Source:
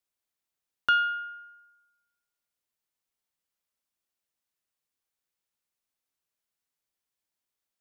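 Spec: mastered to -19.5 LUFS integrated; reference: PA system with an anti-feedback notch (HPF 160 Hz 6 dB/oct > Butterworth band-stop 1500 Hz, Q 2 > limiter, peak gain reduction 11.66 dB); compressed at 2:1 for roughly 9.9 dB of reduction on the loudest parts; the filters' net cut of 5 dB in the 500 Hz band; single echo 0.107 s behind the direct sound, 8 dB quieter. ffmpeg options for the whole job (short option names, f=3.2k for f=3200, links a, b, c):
-af "equalizer=f=500:t=o:g=-6,acompressor=threshold=-38dB:ratio=2,highpass=f=160:p=1,asuperstop=centerf=1500:order=8:qfactor=2,aecho=1:1:107:0.398,volume=29.5dB,alimiter=limit=-4.5dB:level=0:latency=1"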